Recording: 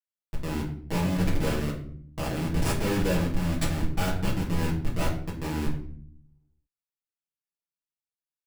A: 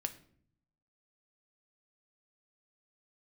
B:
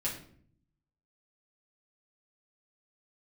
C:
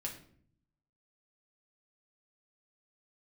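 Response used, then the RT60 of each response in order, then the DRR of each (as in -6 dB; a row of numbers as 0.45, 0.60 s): B; 0.60, 0.60, 0.60 s; 7.0, -6.5, -1.5 dB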